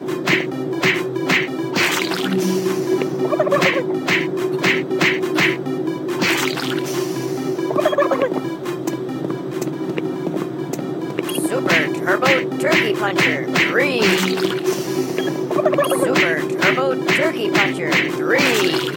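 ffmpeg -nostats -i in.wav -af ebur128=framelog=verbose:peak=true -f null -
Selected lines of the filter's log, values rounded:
Integrated loudness:
  I:         -18.4 LUFS
  Threshold: -28.4 LUFS
Loudness range:
  LRA:         5.0 LU
  Threshold: -38.6 LUFS
  LRA low:   -21.6 LUFS
  LRA high:  -16.6 LUFS
True peak:
  Peak:       -1.2 dBFS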